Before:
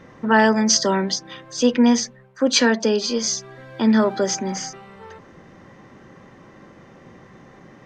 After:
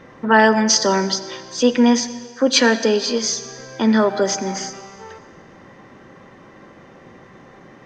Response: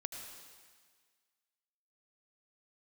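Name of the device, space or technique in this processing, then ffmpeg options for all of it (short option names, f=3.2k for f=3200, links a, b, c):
filtered reverb send: -filter_complex "[0:a]asplit=2[a][b];[b]highpass=220,lowpass=6.8k[c];[1:a]atrim=start_sample=2205[d];[c][d]afir=irnorm=-1:irlink=0,volume=-4.5dB[e];[a][e]amix=inputs=2:normalize=0"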